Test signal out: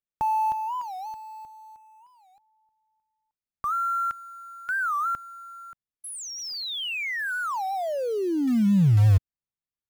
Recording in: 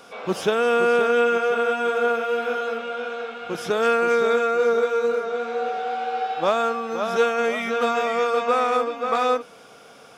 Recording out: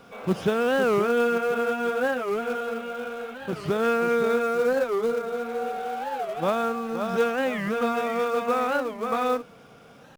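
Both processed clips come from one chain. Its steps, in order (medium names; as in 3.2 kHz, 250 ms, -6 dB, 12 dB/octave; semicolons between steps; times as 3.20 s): tone controls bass +13 dB, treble -8 dB; in parallel at -8 dB: companded quantiser 4-bit; on the sum: warped record 45 rpm, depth 250 cents; trim -7.5 dB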